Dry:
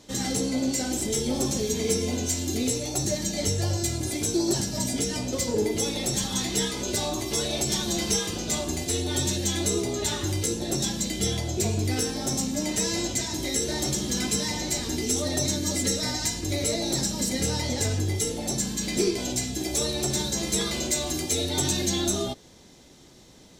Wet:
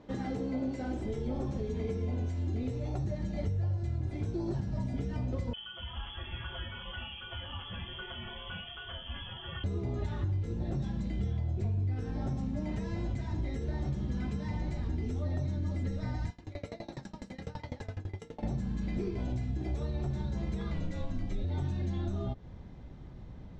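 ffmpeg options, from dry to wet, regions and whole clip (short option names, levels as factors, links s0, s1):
-filter_complex "[0:a]asettb=1/sr,asplit=3[s0][s1][s2];[s0]atrim=end=5.534[s3];[s1]atrim=start=5.53:end=9.64,asetpts=PTS-STARTPTS,afade=t=in:d=0.004:c=qsin,afade=t=out:st=4.106:d=0.004:c=qsin,aecho=1:1:6.4:0.88,atrim=end_sample=181251,lowpass=f=3000:t=q:w=0.5098,lowpass=f=3000:t=q:w=0.6013,lowpass=f=3000:t=q:w=0.9,lowpass=f=3000:t=q:w=2.563,afreqshift=-3500[s4];[s2]atrim=start=9.636[s5];[s3][s4]acrossfade=d=0.004:c1=hsin:c2=qsin[s6];[s6][s5]acrossfade=d=0.004:c1=qsin:c2=hsin,asettb=1/sr,asplit=3[s7][s8][s9];[s7]atrim=end=16.304[s10];[s8]atrim=start=16.3:end=18.43,asetpts=PTS-STARTPTS,afade=t=in:d=0.004:c=qsin,afade=t=out:st=2.126:d=0.004:c=qsin,highpass=f=610:p=1,aeval=exprs='val(0)*pow(10,-24*if(lt(mod(12*n/s,1),2*abs(12)/1000),1-mod(12*n/s,1)/(2*abs(12)/1000),(mod(12*n/s,1)-2*abs(12)/1000)/(1-2*abs(12)/1000))/20)':c=same[s11];[s9]atrim=start=18.426[s12];[s10][s11]acrossfade=d=0.004:c1=hsin:c2=qsin[s13];[s13][s12]acrossfade=d=0.004:c1=qsin:c2=hsin,asettb=1/sr,asplit=3[s14][s15][s16];[s14]atrim=end=20.744[s17];[s15]atrim=start=20.74:end=21.44,asetpts=PTS-STARTPTS,afade=t=in:d=0.004:c=qsin,afade=t=out:st=0.696:d=0.004:c=qsin,acrossover=split=7500[s18][s19];[s19]acompressor=threshold=0.02:ratio=4:attack=1:release=60[s20];[s18][s20]amix=inputs=2:normalize=0,afreqshift=-60[s21];[s16]atrim=start=21.436[s22];[s17][s21]acrossfade=d=0.004:c1=hsin:c2=qsin[s23];[s23][s22]acrossfade=d=0.004:c1=qsin:c2=hsin,asubboost=boost=5.5:cutoff=140,acompressor=threshold=0.0316:ratio=6,lowpass=1500"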